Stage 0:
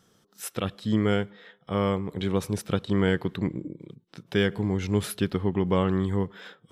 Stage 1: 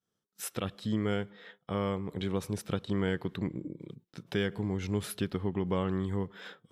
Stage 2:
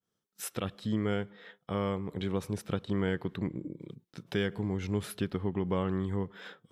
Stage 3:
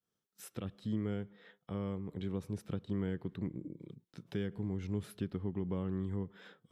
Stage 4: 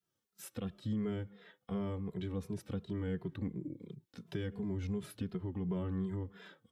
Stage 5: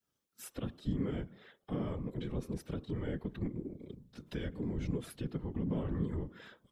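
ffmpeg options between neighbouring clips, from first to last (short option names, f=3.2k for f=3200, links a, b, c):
-af "agate=range=-33dB:threshold=-49dB:ratio=3:detection=peak,acompressor=threshold=-39dB:ratio=1.5"
-af "adynamicequalizer=threshold=0.00224:dfrequency=3100:dqfactor=0.7:tfrequency=3100:tqfactor=0.7:attack=5:release=100:ratio=0.375:range=2:mode=cutabove:tftype=highshelf"
-filter_complex "[0:a]acrossover=split=390[a][b];[b]acompressor=threshold=-59dB:ratio=1.5[c];[a][c]amix=inputs=2:normalize=0,volume=-4dB"
-filter_complex "[0:a]alimiter=level_in=5dB:limit=-24dB:level=0:latency=1:release=42,volume=-5dB,asplit=2[a][b];[b]adelay=2.5,afreqshift=-2.8[c];[a][c]amix=inputs=2:normalize=1,volume=4.5dB"
-af "bandreject=f=143.7:t=h:w=4,bandreject=f=287.4:t=h:w=4,bandreject=f=431.1:t=h:w=4,bandreject=f=574.8:t=h:w=4,bandreject=f=718.5:t=h:w=4,bandreject=f=862.2:t=h:w=4,bandreject=f=1.0059k:t=h:w=4,bandreject=f=1.1496k:t=h:w=4,afftfilt=real='hypot(re,im)*cos(2*PI*random(0))':imag='hypot(re,im)*sin(2*PI*random(1))':win_size=512:overlap=0.75,volume=7dB"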